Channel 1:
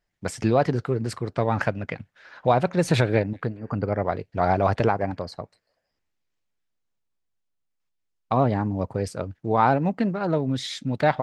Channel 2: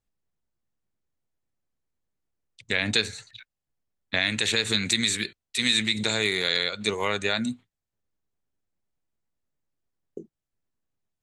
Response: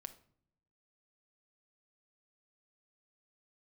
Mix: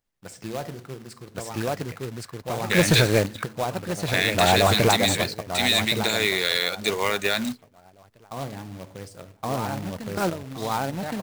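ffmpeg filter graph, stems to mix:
-filter_complex "[0:a]highshelf=f=3k:g=7,volume=1dB,asplit=3[a][b][c];[b]volume=-10.5dB[d];[c]volume=-9.5dB[e];[1:a]bass=f=250:g=-5,treble=f=4k:g=-3,volume=2.5dB,asplit=3[f][g][h];[g]volume=-18dB[i];[h]apad=whole_len=494949[j];[a][j]sidechaingate=range=-33dB:threshold=-45dB:ratio=16:detection=peak[k];[2:a]atrim=start_sample=2205[l];[d][i]amix=inputs=2:normalize=0[m];[m][l]afir=irnorm=-1:irlink=0[n];[e]aecho=0:1:1119|2238|3357|4476:1|0.24|0.0576|0.0138[o];[k][f][n][o]amix=inputs=4:normalize=0,acrusher=bits=2:mode=log:mix=0:aa=0.000001,asoftclip=type=tanh:threshold=-7.5dB"

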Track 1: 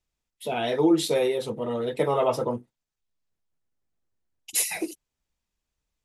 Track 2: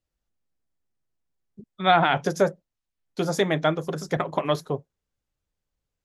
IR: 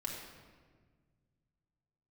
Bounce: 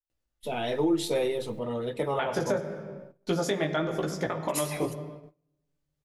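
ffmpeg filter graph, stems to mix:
-filter_complex "[0:a]lowshelf=f=70:g=12,volume=-5dB,asplit=2[a][b];[b]volume=-13.5dB[c];[1:a]acompressor=mode=upward:threshold=-38dB:ratio=2.5,flanger=delay=15.5:depth=4.7:speed=1,adelay=100,volume=-0.5dB,asplit=3[d][e][f];[d]atrim=end=1.59,asetpts=PTS-STARTPTS,afade=t=out:st=1.586:d=0.004:c=hsin[g];[e]atrim=start=1.59:end=2.19,asetpts=PTS-STARTPTS,volume=0[h];[f]atrim=start=2.19,asetpts=PTS-STARTPTS,afade=t=in:d=0.004:c=hsin[i];[g][h][i]concat=n=3:v=0:a=1,asplit=2[j][k];[k]volume=-5dB[l];[2:a]atrim=start_sample=2205[m];[c][l]amix=inputs=2:normalize=0[n];[n][m]afir=irnorm=-1:irlink=0[o];[a][j][o]amix=inputs=3:normalize=0,agate=range=-25dB:threshold=-44dB:ratio=16:detection=peak,alimiter=limit=-17dB:level=0:latency=1:release=215"

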